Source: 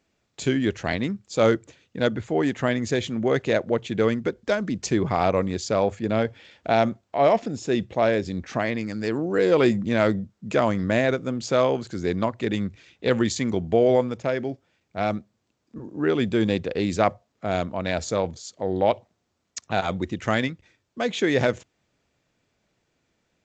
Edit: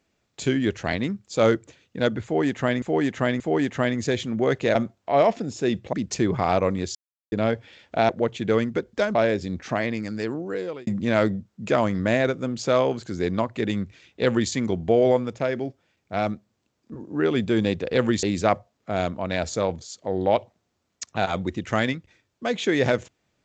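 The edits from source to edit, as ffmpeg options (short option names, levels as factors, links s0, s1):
-filter_complex "[0:a]asplit=12[s0][s1][s2][s3][s4][s5][s6][s7][s8][s9][s10][s11];[s0]atrim=end=2.822[s12];[s1]atrim=start=2.238:end=2.822[s13];[s2]atrim=start=2.238:end=3.592[s14];[s3]atrim=start=6.808:end=7.992[s15];[s4]atrim=start=4.648:end=5.67,asetpts=PTS-STARTPTS,afade=t=out:st=1.018:d=0.004:c=hsin[s16];[s5]atrim=start=5.67:end=6.04,asetpts=PTS-STARTPTS,volume=0[s17];[s6]atrim=start=6.04:end=6.812,asetpts=PTS-STARTPTS,afade=t=in:d=0.004:c=hsin[s18];[s7]atrim=start=3.588:end=4.652[s19];[s8]atrim=start=7.988:end=9.71,asetpts=PTS-STARTPTS,afade=t=out:st=0.932:d=0.79[s20];[s9]atrim=start=9.71:end=16.782,asetpts=PTS-STARTPTS,afade=t=in:d=0.004:c=hsin[s21];[s10]atrim=start=13.058:end=13.352[s22];[s11]atrim=start=16.778[s23];[s12][s13]acrossfade=d=0.004:c1=hsin:c2=hsin[s24];[s24][s14]acrossfade=d=0.004:c1=hsin:c2=hsin[s25];[s25][s15]acrossfade=d=0.004:c1=hsin:c2=hsin[s26];[s16][s17][s18]concat=n=3:v=0:a=1[s27];[s26][s27]acrossfade=d=0.004:c1=hsin:c2=hsin[s28];[s28][s19]acrossfade=d=0.004:c1=hsin:c2=hsin[s29];[s20][s21]concat=n=2:v=0:a=1[s30];[s29][s30]acrossfade=d=0.004:c1=hsin:c2=hsin[s31];[s31][s22]acrossfade=d=0.004:c1=hsin:c2=hsin[s32];[s32][s23]acrossfade=d=0.004:c1=hsin:c2=hsin"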